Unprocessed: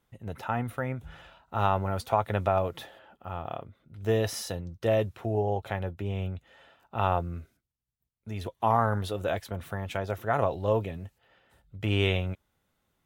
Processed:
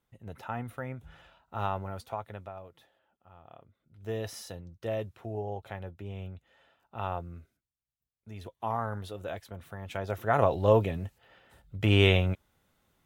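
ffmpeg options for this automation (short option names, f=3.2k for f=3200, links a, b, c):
-af "volume=17dB,afade=t=out:st=1.63:d=0.91:silence=0.223872,afade=t=in:st=3.4:d=0.86:silence=0.281838,afade=t=in:st=9.77:d=0.88:silence=0.251189"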